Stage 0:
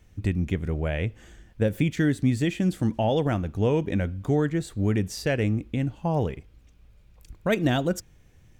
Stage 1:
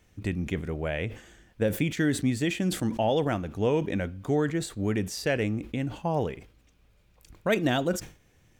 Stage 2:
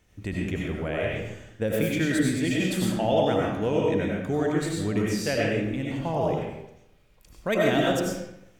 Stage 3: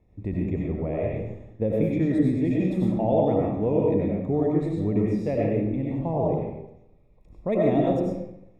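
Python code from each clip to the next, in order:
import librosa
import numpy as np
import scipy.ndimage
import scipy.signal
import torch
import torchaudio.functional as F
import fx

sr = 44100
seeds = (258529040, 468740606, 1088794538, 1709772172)

y1 = fx.low_shelf(x, sr, hz=150.0, db=-10.5)
y1 = fx.sustainer(y1, sr, db_per_s=140.0)
y2 = fx.rev_freeverb(y1, sr, rt60_s=0.84, hf_ratio=0.8, predelay_ms=55, drr_db=-3.5)
y2 = F.gain(torch.from_numpy(y2), -2.0).numpy()
y3 = np.convolve(y2, np.full(29, 1.0 / 29))[:len(y2)]
y3 = F.gain(torch.from_numpy(y3), 3.0).numpy()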